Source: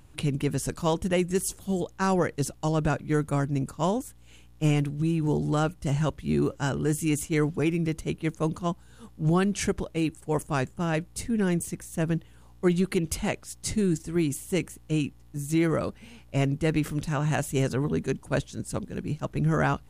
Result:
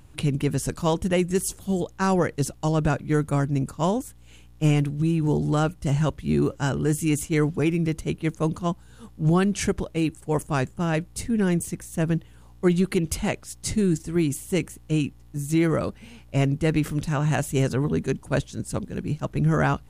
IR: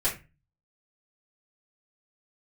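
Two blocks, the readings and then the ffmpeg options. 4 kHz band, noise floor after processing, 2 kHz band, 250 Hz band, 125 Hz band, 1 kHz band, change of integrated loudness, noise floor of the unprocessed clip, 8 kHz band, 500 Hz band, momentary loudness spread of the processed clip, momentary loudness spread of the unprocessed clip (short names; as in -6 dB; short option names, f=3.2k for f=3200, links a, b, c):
+2.0 dB, -49 dBFS, +2.0 dB, +3.0 dB, +3.5 dB, +2.0 dB, +3.0 dB, -52 dBFS, +2.0 dB, +2.5 dB, 7 LU, 6 LU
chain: -af "equalizer=f=86:t=o:w=2.8:g=2,volume=2dB"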